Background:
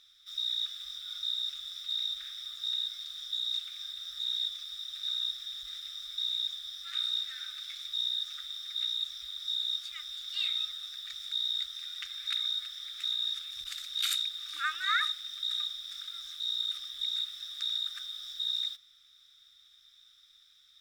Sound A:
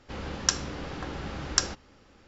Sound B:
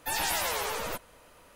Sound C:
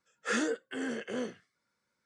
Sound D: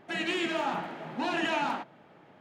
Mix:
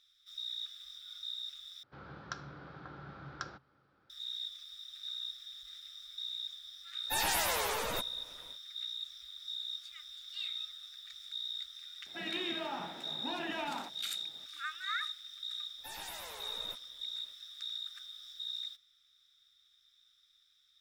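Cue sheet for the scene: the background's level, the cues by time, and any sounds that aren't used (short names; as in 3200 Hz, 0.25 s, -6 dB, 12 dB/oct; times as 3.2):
background -8 dB
1.83 replace with A -13 dB + speaker cabinet 110–4000 Hz, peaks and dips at 140 Hz +9 dB, 230 Hz -7 dB, 480 Hz -3 dB, 1400 Hz +10 dB, 2000 Hz -5 dB, 2800 Hz -10 dB
7.04 add B -2 dB, fades 0.10 s
12.06 add D -9 dB + bell 7300 Hz -9.5 dB 0.67 oct
15.78 add B -16.5 dB
not used: C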